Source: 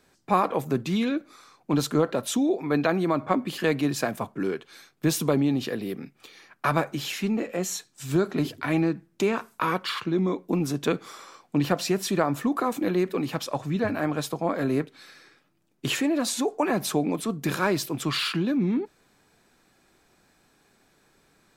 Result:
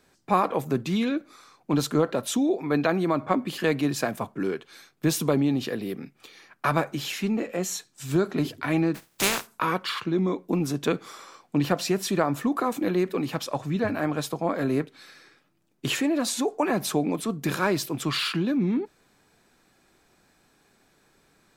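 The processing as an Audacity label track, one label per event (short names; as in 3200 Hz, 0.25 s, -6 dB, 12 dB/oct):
8.940000	9.460000	spectral contrast lowered exponent 0.32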